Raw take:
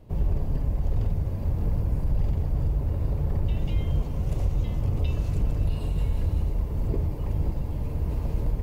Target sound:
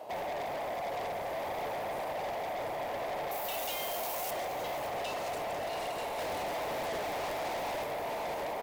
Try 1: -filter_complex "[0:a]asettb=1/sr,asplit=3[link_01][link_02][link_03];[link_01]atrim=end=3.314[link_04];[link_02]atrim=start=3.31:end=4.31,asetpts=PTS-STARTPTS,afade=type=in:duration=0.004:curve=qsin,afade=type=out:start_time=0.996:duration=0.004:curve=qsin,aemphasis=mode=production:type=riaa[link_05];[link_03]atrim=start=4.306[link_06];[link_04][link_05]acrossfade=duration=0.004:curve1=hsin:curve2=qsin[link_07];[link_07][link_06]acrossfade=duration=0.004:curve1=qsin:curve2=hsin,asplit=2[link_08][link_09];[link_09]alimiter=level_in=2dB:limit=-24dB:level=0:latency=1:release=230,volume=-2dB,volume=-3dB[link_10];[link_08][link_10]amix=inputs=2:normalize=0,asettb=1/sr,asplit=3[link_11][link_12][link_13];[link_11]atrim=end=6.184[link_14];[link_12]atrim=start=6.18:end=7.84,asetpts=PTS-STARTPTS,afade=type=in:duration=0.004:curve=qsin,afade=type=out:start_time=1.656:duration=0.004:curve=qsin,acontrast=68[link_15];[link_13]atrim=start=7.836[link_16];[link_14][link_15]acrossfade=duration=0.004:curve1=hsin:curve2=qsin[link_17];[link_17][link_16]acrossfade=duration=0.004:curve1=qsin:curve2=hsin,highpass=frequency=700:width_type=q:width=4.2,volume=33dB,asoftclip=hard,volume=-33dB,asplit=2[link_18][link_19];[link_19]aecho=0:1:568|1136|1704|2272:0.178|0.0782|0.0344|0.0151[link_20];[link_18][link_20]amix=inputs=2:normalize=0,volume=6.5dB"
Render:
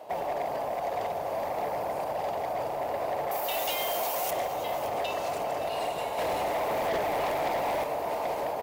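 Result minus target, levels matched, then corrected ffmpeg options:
gain into a clipping stage and back: distortion −5 dB
-filter_complex "[0:a]asettb=1/sr,asplit=3[link_01][link_02][link_03];[link_01]atrim=end=3.314[link_04];[link_02]atrim=start=3.31:end=4.31,asetpts=PTS-STARTPTS,afade=type=in:duration=0.004:curve=qsin,afade=type=out:start_time=0.996:duration=0.004:curve=qsin,aemphasis=mode=production:type=riaa[link_05];[link_03]atrim=start=4.306[link_06];[link_04][link_05]acrossfade=duration=0.004:curve1=hsin:curve2=qsin[link_07];[link_07][link_06]acrossfade=duration=0.004:curve1=qsin:curve2=hsin,asplit=2[link_08][link_09];[link_09]alimiter=level_in=2dB:limit=-24dB:level=0:latency=1:release=230,volume=-2dB,volume=-3dB[link_10];[link_08][link_10]amix=inputs=2:normalize=0,asettb=1/sr,asplit=3[link_11][link_12][link_13];[link_11]atrim=end=6.184[link_14];[link_12]atrim=start=6.18:end=7.84,asetpts=PTS-STARTPTS,afade=type=in:duration=0.004:curve=qsin,afade=type=out:start_time=1.656:duration=0.004:curve=qsin,acontrast=68[link_15];[link_13]atrim=start=7.836[link_16];[link_14][link_15]acrossfade=duration=0.004:curve1=hsin:curve2=qsin[link_17];[link_17][link_16]acrossfade=duration=0.004:curve1=qsin:curve2=hsin,highpass=frequency=700:width_type=q:width=4.2,volume=41dB,asoftclip=hard,volume=-41dB,asplit=2[link_18][link_19];[link_19]aecho=0:1:568|1136|1704|2272:0.178|0.0782|0.0344|0.0151[link_20];[link_18][link_20]amix=inputs=2:normalize=0,volume=6.5dB"

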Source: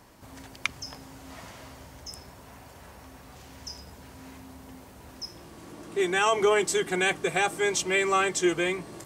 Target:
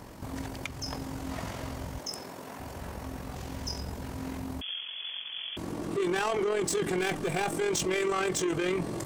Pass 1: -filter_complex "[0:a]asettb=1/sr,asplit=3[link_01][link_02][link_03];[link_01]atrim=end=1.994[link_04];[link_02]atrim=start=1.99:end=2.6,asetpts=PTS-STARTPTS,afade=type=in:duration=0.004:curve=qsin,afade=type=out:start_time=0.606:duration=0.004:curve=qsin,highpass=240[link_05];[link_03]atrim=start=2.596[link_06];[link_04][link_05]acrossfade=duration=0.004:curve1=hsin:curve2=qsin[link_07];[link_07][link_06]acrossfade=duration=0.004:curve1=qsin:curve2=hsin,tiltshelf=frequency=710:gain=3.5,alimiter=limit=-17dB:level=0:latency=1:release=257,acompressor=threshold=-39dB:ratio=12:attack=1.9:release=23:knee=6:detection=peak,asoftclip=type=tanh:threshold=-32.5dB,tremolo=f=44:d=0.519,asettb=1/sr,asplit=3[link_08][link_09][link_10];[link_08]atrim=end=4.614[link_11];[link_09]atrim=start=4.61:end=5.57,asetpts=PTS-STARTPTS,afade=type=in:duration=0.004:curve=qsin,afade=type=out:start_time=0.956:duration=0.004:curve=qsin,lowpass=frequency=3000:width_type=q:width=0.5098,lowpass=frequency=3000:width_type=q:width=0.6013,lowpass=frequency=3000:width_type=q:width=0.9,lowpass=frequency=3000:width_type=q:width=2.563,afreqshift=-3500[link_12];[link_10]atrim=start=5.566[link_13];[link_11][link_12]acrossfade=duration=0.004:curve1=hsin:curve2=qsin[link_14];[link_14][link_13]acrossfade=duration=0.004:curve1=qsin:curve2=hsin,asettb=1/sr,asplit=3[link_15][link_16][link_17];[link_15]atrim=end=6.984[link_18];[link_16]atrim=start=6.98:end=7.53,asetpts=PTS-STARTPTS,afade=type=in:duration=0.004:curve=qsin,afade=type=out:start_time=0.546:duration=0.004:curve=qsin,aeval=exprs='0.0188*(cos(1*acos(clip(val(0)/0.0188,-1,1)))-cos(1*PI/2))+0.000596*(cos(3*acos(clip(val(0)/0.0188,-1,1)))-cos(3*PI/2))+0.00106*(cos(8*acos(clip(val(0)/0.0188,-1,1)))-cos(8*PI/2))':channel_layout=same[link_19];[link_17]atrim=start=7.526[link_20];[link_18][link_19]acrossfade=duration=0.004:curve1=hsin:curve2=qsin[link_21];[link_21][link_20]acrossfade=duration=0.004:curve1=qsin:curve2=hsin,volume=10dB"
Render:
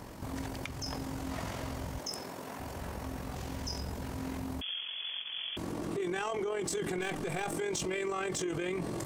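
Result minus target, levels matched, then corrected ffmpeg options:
downward compressor: peak gain reduction +9 dB
-filter_complex "[0:a]asettb=1/sr,asplit=3[link_01][link_02][link_03];[link_01]atrim=end=1.994[link_04];[link_02]atrim=start=1.99:end=2.6,asetpts=PTS-STARTPTS,afade=type=in:duration=0.004:curve=qsin,afade=type=out:start_time=0.606:duration=0.004:curve=qsin,highpass=240[link_05];[link_03]atrim=start=2.596[link_06];[link_04][link_05]acrossfade=duration=0.004:curve1=hsin:curve2=qsin[link_07];[link_07][link_06]acrossfade=duration=0.004:curve1=qsin:curve2=hsin,tiltshelf=frequency=710:gain=3.5,alimiter=limit=-17dB:level=0:latency=1:release=257,acompressor=threshold=-29dB:ratio=12:attack=1.9:release=23:knee=6:detection=peak,asoftclip=type=tanh:threshold=-32.5dB,tremolo=f=44:d=0.519,asettb=1/sr,asplit=3[link_08][link_09][link_10];[link_08]atrim=end=4.614[link_11];[link_09]atrim=start=4.61:end=5.57,asetpts=PTS-STARTPTS,afade=type=in:duration=0.004:curve=qsin,afade=type=out:start_time=0.956:duration=0.004:curve=qsin,lowpass=frequency=3000:width_type=q:width=0.5098,lowpass=frequency=3000:width_type=q:width=0.6013,lowpass=frequency=3000:width_type=q:width=0.9,lowpass=frequency=3000:width_type=q:width=2.563,afreqshift=-3500[link_12];[link_10]atrim=start=5.566[link_13];[link_11][link_12]acrossfade=duration=0.004:curve1=hsin:curve2=qsin[link_14];[link_14][link_13]acrossfade=duration=0.004:curve1=qsin:curve2=hsin,asettb=1/sr,asplit=3[link_15][link_16][link_17];[link_15]atrim=end=6.984[link_18];[link_16]atrim=start=6.98:end=7.53,asetpts=PTS-STARTPTS,afade=type=in:duration=0.004:curve=qsin,afade=type=out:start_time=0.546:duration=0.004:curve=qsin,aeval=exprs='0.0188*(cos(1*acos(clip(val(0)/0.0188,-1,1)))-cos(1*PI/2))+0.000596*(cos(3*acos(clip(val(0)/0.0188,-1,1)))-cos(3*PI/2))+0.00106*(cos(8*acos(clip(val(0)/0.0188,-1,1)))-cos(8*PI/2))':channel_layout=same[link_19];[link_17]atrim=start=7.526[link_20];[link_18][link_19]acrossfade=duration=0.004:curve1=hsin:curve2=qsin[link_21];[link_21][link_20]acrossfade=duration=0.004:curve1=qsin:curve2=hsin,volume=10dB"

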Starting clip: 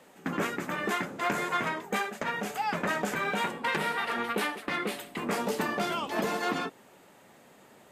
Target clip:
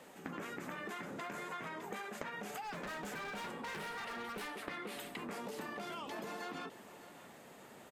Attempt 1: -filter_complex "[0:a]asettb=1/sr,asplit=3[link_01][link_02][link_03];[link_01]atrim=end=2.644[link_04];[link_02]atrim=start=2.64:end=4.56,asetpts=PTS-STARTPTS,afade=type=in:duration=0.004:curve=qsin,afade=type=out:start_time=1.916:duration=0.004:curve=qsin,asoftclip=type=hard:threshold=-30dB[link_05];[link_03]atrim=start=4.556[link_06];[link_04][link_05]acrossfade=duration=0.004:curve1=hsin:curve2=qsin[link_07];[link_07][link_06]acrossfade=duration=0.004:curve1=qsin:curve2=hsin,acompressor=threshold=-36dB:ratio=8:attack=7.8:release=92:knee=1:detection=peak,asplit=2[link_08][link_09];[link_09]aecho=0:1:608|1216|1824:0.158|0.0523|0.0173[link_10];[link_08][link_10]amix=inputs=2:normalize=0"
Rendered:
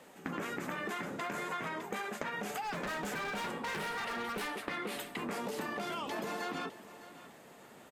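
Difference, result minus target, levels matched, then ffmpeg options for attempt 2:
downward compressor: peak gain reduction −5.5 dB
-filter_complex "[0:a]asettb=1/sr,asplit=3[link_01][link_02][link_03];[link_01]atrim=end=2.644[link_04];[link_02]atrim=start=2.64:end=4.56,asetpts=PTS-STARTPTS,afade=type=in:duration=0.004:curve=qsin,afade=type=out:start_time=1.916:duration=0.004:curve=qsin,asoftclip=type=hard:threshold=-30dB[link_05];[link_03]atrim=start=4.556[link_06];[link_04][link_05]acrossfade=duration=0.004:curve1=hsin:curve2=qsin[link_07];[link_07][link_06]acrossfade=duration=0.004:curve1=qsin:curve2=hsin,acompressor=threshold=-42.5dB:ratio=8:attack=7.8:release=92:knee=1:detection=peak,asplit=2[link_08][link_09];[link_09]aecho=0:1:608|1216|1824:0.158|0.0523|0.0173[link_10];[link_08][link_10]amix=inputs=2:normalize=0"

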